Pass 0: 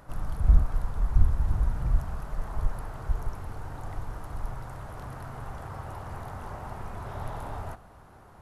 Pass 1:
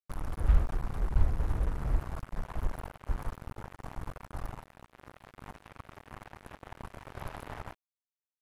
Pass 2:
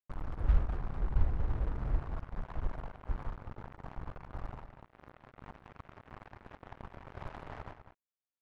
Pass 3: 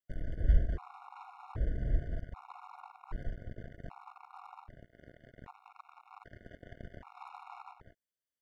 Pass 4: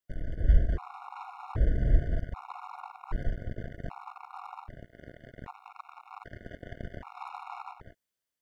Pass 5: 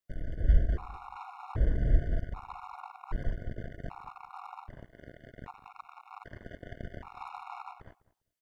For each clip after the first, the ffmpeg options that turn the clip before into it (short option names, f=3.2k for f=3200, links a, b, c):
-af "acrusher=bits=4:mix=0:aa=0.5,volume=-5dB"
-filter_complex "[0:a]adynamicsmooth=sensitivity=7.5:basefreq=2.6k,asplit=2[a][b];[b]adelay=198.3,volume=-10dB,highshelf=f=4k:g=-4.46[c];[a][c]amix=inputs=2:normalize=0,volume=-3dB"
-af "afftfilt=real='re*gt(sin(2*PI*0.64*pts/sr)*(1-2*mod(floor(b*sr/1024/720),2)),0)':imag='im*gt(sin(2*PI*0.64*pts/sr)*(1-2*mod(floor(b*sr/1024/720),2)),0)':win_size=1024:overlap=0.75,volume=1.5dB"
-af "dynaudnorm=f=280:g=5:m=5dB,volume=2.5dB"
-filter_complex "[0:a]asplit=2[a][b];[b]adelay=201,lowpass=f=1.4k:p=1,volume=-18.5dB,asplit=2[c][d];[d]adelay=201,lowpass=f=1.4k:p=1,volume=0.18[e];[a][c][e]amix=inputs=3:normalize=0,volume=-1.5dB"